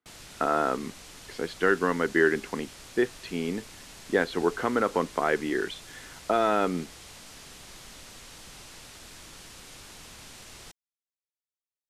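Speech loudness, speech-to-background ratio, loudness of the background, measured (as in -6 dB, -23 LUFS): -27.5 LUFS, 18.0 dB, -45.5 LUFS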